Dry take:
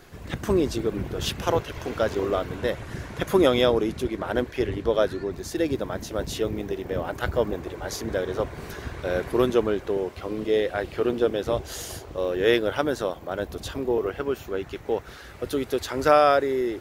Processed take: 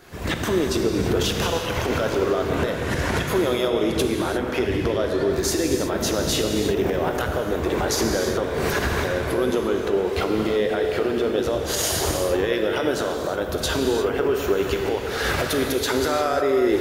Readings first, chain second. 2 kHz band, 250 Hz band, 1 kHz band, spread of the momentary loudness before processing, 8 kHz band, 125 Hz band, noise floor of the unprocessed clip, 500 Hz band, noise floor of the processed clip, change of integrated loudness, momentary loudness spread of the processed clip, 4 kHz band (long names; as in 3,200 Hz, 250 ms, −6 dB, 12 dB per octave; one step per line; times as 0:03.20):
+5.5 dB, +4.0 dB, +1.5 dB, 11 LU, +11.5 dB, +5.0 dB, −43 dBFS, +2.5 dB, −28 dBFS, +3.0 dB, 3 LU, +6.5 dB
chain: camcorder AGC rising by 56 dB per second
low-shelf EQ 99 Hz −8 dB
brickwall limiter −14 dBFS, peak gain reduction 10 dB
reverb whose tail is shaped and stops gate 380 ms flat, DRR 2.5 dB